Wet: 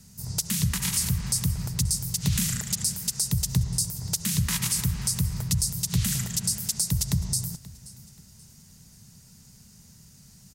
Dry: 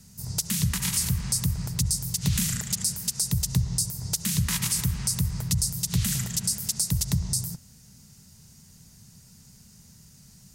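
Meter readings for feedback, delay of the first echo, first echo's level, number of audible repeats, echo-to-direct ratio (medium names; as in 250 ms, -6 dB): 35%, 531 ms, -20.0 dB, 2, -19.5 dB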